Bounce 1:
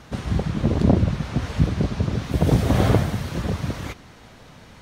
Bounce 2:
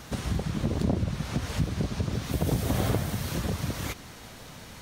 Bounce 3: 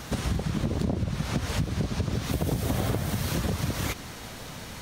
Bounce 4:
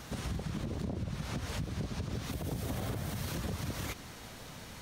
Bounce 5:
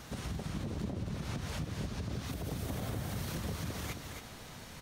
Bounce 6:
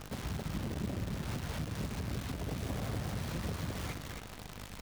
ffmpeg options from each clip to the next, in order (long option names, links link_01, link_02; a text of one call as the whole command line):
ffmpeg -i in.wav -af "acompressor=threshold=-30dB:ratio=2,aemphasis=mode=production:type=50kf" out.wav
ffmpeg -i in.wav -af "acompressor=threshold=-29dB:ratio=4,volume=5dB" out.wav
ffmpeg -i in.wav -af "alimiter=limit=-20dB:level=0:latency=1:release=25,volume=-7.5dB" out.wav
ffmpeg -i in.wav -af "aecho=1:1:268:0.501,volume=-2dB" out.wav
ffmpeg -i in.wav -af "aeval=exprs='val(0)+0.00355*(sin(2*PI*50*n/s)+sin(2*PI*2*50*n/s)/2+sin(2*PI*3*50*n/s)/3+sin(2*PI*4*50*n/s)/4+sin(2*PI*5*50*n/s)/5)':channel_layout=same,aemphasis=mode=reproduction:type=50fm,acrusher=bits=8:dc=4:mix=0:aa=0.000001" out.wav